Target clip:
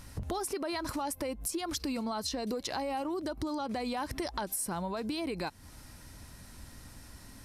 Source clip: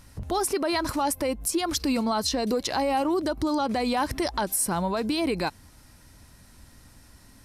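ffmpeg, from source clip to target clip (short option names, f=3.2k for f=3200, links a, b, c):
-af "acompressor=threshold=-36dB:ratio=4,volume=2dB"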